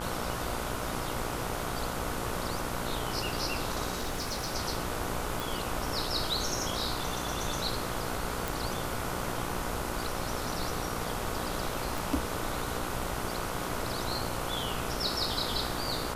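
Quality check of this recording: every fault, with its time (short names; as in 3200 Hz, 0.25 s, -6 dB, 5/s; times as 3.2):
buzz 60 Hz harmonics 25 -38 dBFS
3.95–4.54 clipped -28.5 dBFS
5.4 pop
8.48 pop
11.98 pop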